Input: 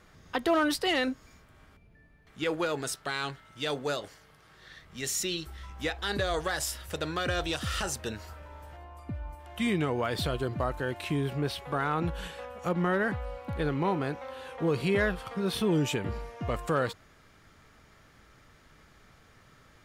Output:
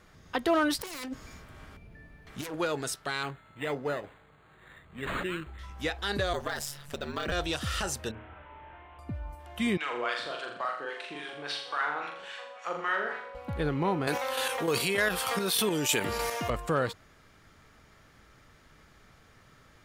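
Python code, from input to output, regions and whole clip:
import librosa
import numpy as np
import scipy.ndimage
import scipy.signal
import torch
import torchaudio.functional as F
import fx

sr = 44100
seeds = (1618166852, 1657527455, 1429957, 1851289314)

y = fx.chain(x, sr, fx.self_delay(depth_ms=0.49),
    fx.over_compress(threshold_db=-38.0, ratio=-1.0), at=(0.79, 2.54))
y = fx.chain(y, sr, fx.highpass(hz=42.0, slope=12),
    fx.resample_linear(factor=8), at=(3.23, 5.59))
y = fx.chain(y, sr, fx.ring_mod(carrier_hz=73.0),
    fx.resample_linear(factor=2), at=(6.33, 7.32))
y = fx.chain(y, sr, fx.delta_mod(bps=16000, step_db=-54.5),
    fx.low_shelf(hz=460.0, db=-5.5),
    fx.room_flutter(wall_m=6.0, rt60_s=0.52), at=(8.11, 8.99))
y = fx.chain(y, sr, fx.weighting(curve='ITU-R 468'),
    fx.filter_lfo_bandpass(shape='sine', hz=3.6, low_hz=340.0, high_hz=1700.0, q=1.0),
    fx.room_flutter(wall_m=7.1, rt60_s=0.64), at=(9.77, 13.35))
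y = fx.chain(y, sr, fx.chopper(hz=3.3, depth_pct=60, duty_pct=35),
    fx.riaa(side='recording'),
    fx.env_flatten(amount_pct=70), at=(14.07, 16.5))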